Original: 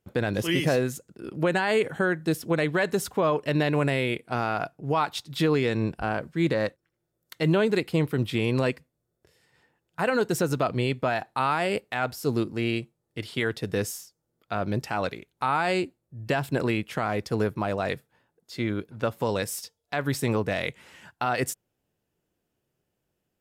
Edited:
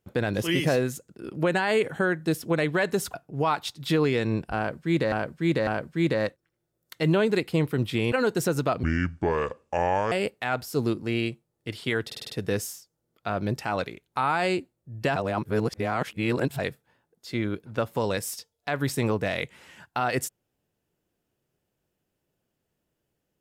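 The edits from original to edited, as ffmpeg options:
-filter_complex "[0:a]asplit=14[s0][s1][s2][s3][s4][s5][s6][s7][s8][s9][s10][s11][s12][s13];[s0]atrim=end=3.142[s14];[s1]atrim=start=4.638:end=6.622[s15];[s2]atrim=start=6.068:end=6.622[s16];[s3]atrim=start=6.068:end=8.522[s17];[s4]atrim=start=10.058:end=10.774[s18];[s5]atrim=start=10.77:end=11.62,asetpts=PTS-STARTPTS,asetrate=29106,aresample=44100,atrim=end_sample=56795,asetpts=PTS-STARTPTS[s19];[s6]atrim=start=11.616:end=13.602[s20];[s7]atrim=start=13.548:end=13.602[s21];[s8]atrim=start=13.548:end=13.602[s22];[s9]atrim=start=13.548:end=13.602[s23];[s10]atrim=start=13.548:end=13.602[s24];[s11]atrim=start=13.548:end=16.412[s25];[s12]atrim=start=16.408:end=17.842,asetpts=PTS-STARTPTS,areverse[s26];[s13]atrim=start=17.838[s27];[s14][s15]acrossfade=d=0.004:c1=hsin:c2=hsin[s28];[s28][s16]acrossfade=d=0.004:c1=hsin:c2=hsin[s29];[s29][s17]acrossfade=d=0.004:c1=hsin:c2=hsin[s30];[s30][s18]acrossfade=d=0.004:c1=hsin:c2=hsin[s31];[s31][s19]acrossfade=d=0.004:c1=hsin:c2=hsin[s32];[s32][s20]acrossfade=d=0.004:c1=hsin:c2=hsin[s33];[s33][s21]acrossfade=d=0.004:c1=hsin:c2=hsin[s34];[s34][s22]acrossfade=d=0.004:c1=hsin:c2=hsin[s35];[s35][s23]acrossfade=d=0.004:c1=hsin:c2=hsin[s36];[s36][s24]acrossfade=d=0.004:c1=hsin:c2=hsin[s37];[s37][s25]acrossfade=d=0.004:c1=hsin:c2=hsin[s38];[s38][s26]acrossfade=d=0.004:c1=hsin:c2=hsin[s39];[s39][s27]acrossfade=d=0.004:c1=hsin:c2=hsin"

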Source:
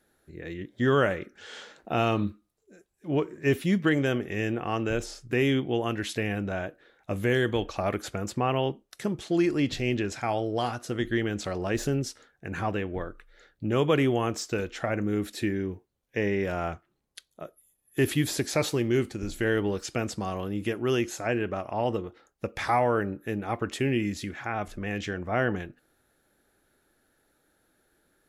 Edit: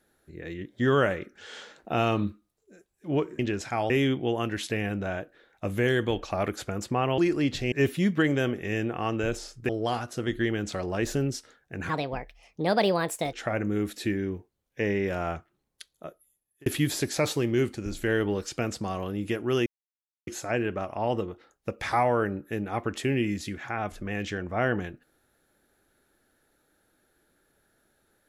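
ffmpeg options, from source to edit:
-filter_complex "[0:a]asplit=10[s0][s1][s2][s3][s4][s5][s6][s7][s8][s9];[s0]atrim=end=3.392[s10];[s1]atrim=start=9.898:end=10.412[s11];[s2]atrim=start=5.358:end=8.642[s12];[s3]atrim=start=9.358:end=9.902[s13];[s4]atrim=start=3.388:end=5.362[s14];[s5]atrim=start=10.408:end=12.614[s15];[s6]atrim=start=12.61:end=14.7,asetpts=PTS-STARTPTS,asetrate=63945,aresample=44100[s16];[s7]atrim=start=14.696:end=18.03,asetpts=PTS-STARTPTS,afade=t=out:st=2.724:d=0.61[s17];[s8]atrim=start=18.03:end=21.03,asetpts=PTS-STARTPTS,afade=t=in:d=0.004:c=hsin,afade=t=out:st=2.996:d=0.004:c=hsin,apad=pad_dur=0.61[s18];[s9]atrim=start=21.03,asetpts=PTS-STARTPTS,afade=t=in:d=0.004:c=hsin[s19];[s10][s11]acrossfade=d=0.004:c1=hsin:c2=hsin[s20];[s20][s12]acrossfade=d=0.004:c1=hsin:c2=hsin[s21];[s21][s13]acrossfade=d=0.004:c1=hsin:c2=hsin[s22];[s22][s14]acrossfade=d=0.004:c1=hsin:c2=hsin[s23];[s23][s15]acrossfade=d=0.004:c1=hsin:c2=hsin[s24];[s24][s16]acrossfade=d=0.004:c1=hsin:c2=hsin[s25];[s17][s18][s19]concat=n=3:v=0:a=1[s26];[s25][s26]acrossfade=d=0.004:c1=hsin:c2=hsin"

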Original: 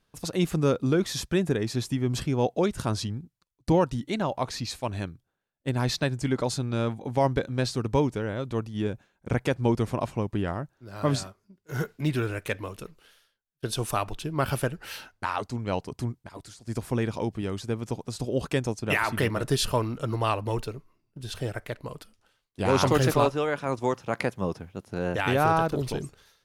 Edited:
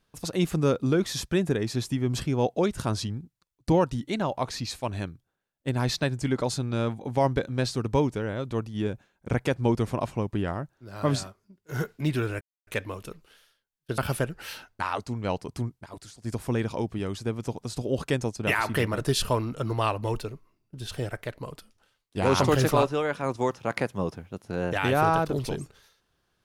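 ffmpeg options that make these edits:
-filter_complex "[0:a]asplit=3[s0][s1][s2];[s0]atrim=end=12.41,asetpts=PTS-STARTPTS,afade=t=out:st=12.406:d=0.004:c=hsin,apad=pad_dur=0.26[s3];[s1]atrim=start=12.41:end=13.722,asetpts=PTS-STARTPTS,afade=t=in:d=0.004:c=hsin[s4];[s2]atrim=start=14.408[s5];[s3][s4]concat=n=2:v=0:a=1[s6];[s6][s5]acrossfade=d=0.004:c1=hsin:c2=hsin"

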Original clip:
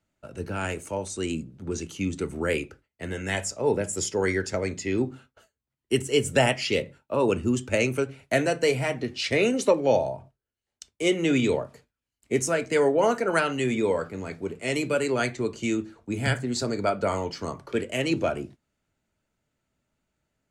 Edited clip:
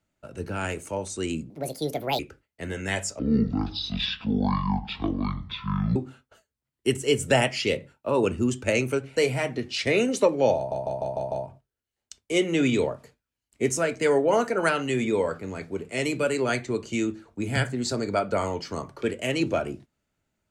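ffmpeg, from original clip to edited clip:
-filter_complex "[0:a]asplit=11[s0][s1][s2][s3][s4][s5][s6][s7][s8][s9][s10];[s0]atrim=end=1.504[s11];[s1]atrim=start=1.5:end=2.6,asetpts=PTS-STARTPTS,asetrate=70119,aresample=44100,atrim=end_sample=30509,asetpts=PTS-STARTPTS[s12];[s2]atrim=start=2.596:end=3.604[s13];[s3]atrim=start=3.6:end=5.01,asetpts=PTS-STARTPTS,asetrate=22491,aresample=44100[s14];[s4]atrim=start=5.006:end=8.222[s15];[s5]atrim=start=8.618:end=10.172[s16];[s6]atrim=start=10.018:end=10.172[s17];[s7]atrim=start=10.018:end=10.172[s18];[s8]atrim=start=10.018:end=10.172[s19];[s9]atrim=start=10.018:end=10.172[s20];[s10]atrim=start=10.018[s21];[s11][s12]acrossfade=d=0.004:c1=hsin:c2=hsin[s22];[s22][s13]acrossfade=d=0.004:c1=hsin:c2=hsin[s23];[s23][s14]acrossfade=d=0.004:c1=hsin:c2=hsin[s24];[s24][s15]acrossfade=d=0.004:c1=hsin:c2=hsin[s25];[s25][s16]acrossfade=d=0.004:c1=hsin:c2=hsin[s26];[s26][s17]acrossfade=d=0.004:c1=hsin:c2=hsin[s27];[s27][s18]acrossfade=d=0.004:c1=hsin:c2=hsin[s28];[s28][s19]acrossfade=d=0.004:c1=hsin:c2=hsin[s29];[s29][s20]acrossfade=d=0.004:c1=hsin:c2=hsin[s30];[s30][s21]acrossfade=d=0.004:c1=hsin:c2=hsin"

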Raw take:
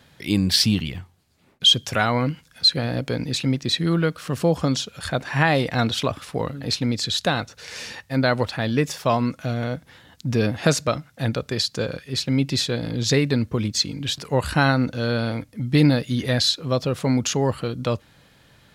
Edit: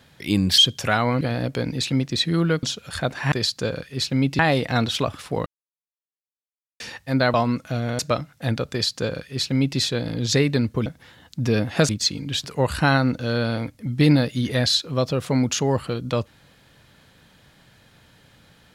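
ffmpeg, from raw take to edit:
-filter_complex "[0:a]asplit=12[s0][s1][s2][s3][s4][s5][s6][s7][s8][s9][s10][s11];[s0]atrim=end=0.582[s12];[s1]atrim=start=1.658:end=2.292[s13];[s2]atrim=start=2.738:end=4.162[s14];[s3]atrim=start=4.728:end=5.422[s15];[s4]atrim=start=11.478:end=12.552[s16];[s5]atrim=start=5.418:end=6.49,asetpts=PTS-STARTPTS,afade=t=out:st=1.068:d=0.004:c=hsin[s17];[s6]atrim=start=6.49:end=7.83,asetpts=PTS-STARTPTS,volume=0[s18];[s7]atrim=start=7.83:end=8.372,asetpts=PTS-STARTPTS,afade=t=in:d=0.004:c=hsin[s19];[s8]atrim=start=9.078:end=9.732[s20];[s9]atrim=start=10.758:end=13.632[s21];[s10]atrim=start=9.728:end=10.762[s22];[s11]atrim=start=13.628[s23];[s12][s13]acrossfade=d=0.004:c1=hsin:c2=hsin[s24];[s24][s14]acrossfade=d=0.004:c1=hsin:c2=hsin[s25];[s25][s15]acrossfade=d=0.004:c1=hsin:c2=hsin[s26];[s26][s16]acrossfade=d=0.004:c1=hsin:c2=hsin[s27];[s17][s18][s19]concat=n=3:v=0:a=1[s28];[s27][s28]acrossfade=d=0.004:c1=hsin:c2=hsin[s29];[s29][s20]acrossfade=d=0.004:c1=hsin:c2=hsin[s30];[s30][s21]acrossfade=d=0.004:c1=hsin:c2=hsin[s31];[s31][s22]acrossfade=d=0.004:c1=hsin:c2=hsin[s32];[s32][s23]acrossfade=d=0.004:c1=hsin:c2=hsin"

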